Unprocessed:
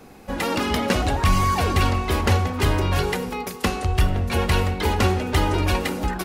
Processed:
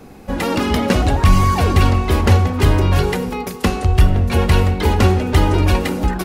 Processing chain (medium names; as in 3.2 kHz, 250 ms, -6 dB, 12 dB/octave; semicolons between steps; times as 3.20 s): bass shelf 470 Hz +6 dB; trim +2 dB